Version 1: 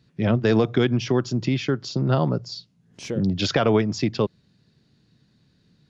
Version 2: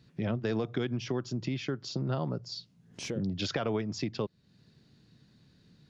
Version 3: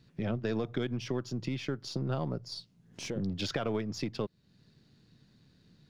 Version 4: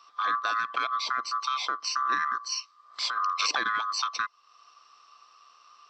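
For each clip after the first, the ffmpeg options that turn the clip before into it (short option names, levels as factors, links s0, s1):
-af "acompressor=threshold=0.0126:ratio=2"
-af "aeval=exprs='if(lt(val(0),0),0.708*val(0),val(0))':c=same"
-af "afftfilt=real='real(if(lt(b,960),b+48*(1-2*mod(floor(b/48),2)),b),0)':imag='imag(if(lt(b,960),b+48*(1-2*mod(floor(b/48),2)),b),0)':win_size=2048:overlap=0.75,highpass=380,equalizer=f=390:t=q:w=4:g=-6,equalizer=f=570:t=q:w=4:g=-6,equalizer=f=920:t=q:w=4:g=3,equalizer=f=1400:t=q:w=4:g=-9,equalizer=f=4600:t=q:w=4:g=8,lowpass=f=6400:w=0.5412,lowpass=f=6400:w=1.3066,volume=2.66"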